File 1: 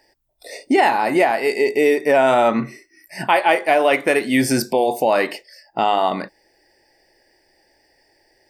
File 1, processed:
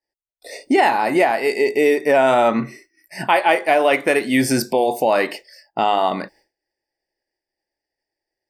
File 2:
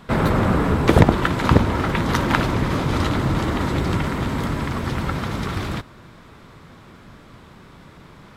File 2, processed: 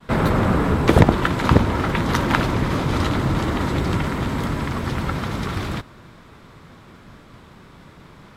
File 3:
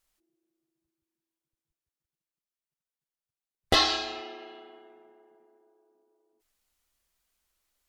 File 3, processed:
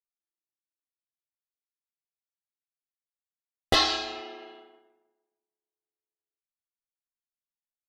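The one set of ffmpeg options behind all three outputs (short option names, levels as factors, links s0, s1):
-af "agate=range=0.0224:threshold=0.00631:ratio=3:detection=peak"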